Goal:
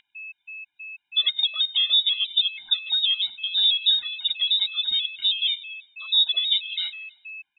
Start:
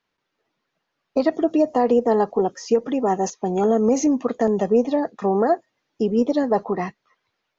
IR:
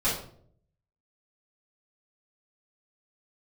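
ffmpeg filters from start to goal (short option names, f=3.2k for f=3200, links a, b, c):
-filter_complex "[0:a]aeval=exprs='val(0)+0.02*sin(2*PI*1400*n/s)':c=same,lowpass=f=3.4k:t=q:w=0.5098,lowpass=f=3.4k:t=q:w=0.6013,lowpass=f=3.4k:t=q:w=0.9,lowpass=f=3.4k:t=q:w=2.563,afreqshift=-4000,asplit=2[a][b];[b]aecho=0:1:101|202|303|404:0.0944|0.0529|0.0296|0.0166[c];[a][c]amix=inputs=2:normalize=0,afftfilt=real='re*gt(sin(2*PI*3.1*pts/sr)*(1-2*mod(floor(b*sr/1024/350),2)),0)':imag='im*gt(sin(2*PI*3.1*pts/sr)*(1-2*mod(floor(b*sr/1024/350),2)),0)':win_size=1024:overlap=0.75"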